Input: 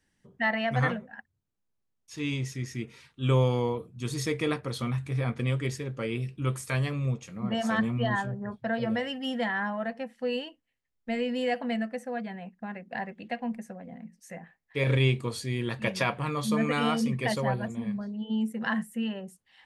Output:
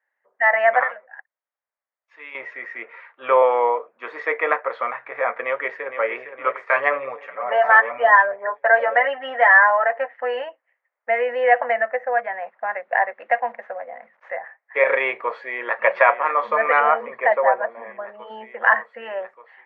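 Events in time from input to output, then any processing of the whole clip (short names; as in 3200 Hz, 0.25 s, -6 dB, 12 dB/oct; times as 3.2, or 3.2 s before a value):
0.83–2.35 pre-emphasis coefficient 0.8
3.42–4.66 steep high-pass 160 Hz
5.4–6.05 echo throw 0.46 s, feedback 55%, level -9 dB
6.75–10.42 comb 6.9 ms, depth 79%
12.32–14.38 CVSD 64 kbps
15.19–15.79 echo throw 0.59 s, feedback 80%, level -10 dB
16.8–18.09 air absorption 450 m
whole clip: elliptic band-pass 560–2000 Hz, stop band 80 dB; AGC gain up to 15 dB; gain +2 dB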